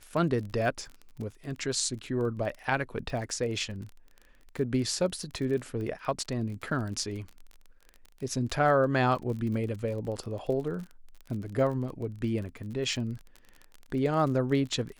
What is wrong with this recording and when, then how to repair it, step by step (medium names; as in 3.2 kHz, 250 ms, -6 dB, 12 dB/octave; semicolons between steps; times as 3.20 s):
crackle 30 per s -36 dBFS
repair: de-click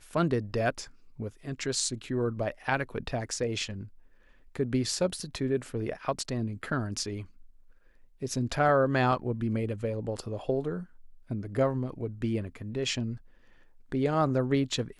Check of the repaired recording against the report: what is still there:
nothing left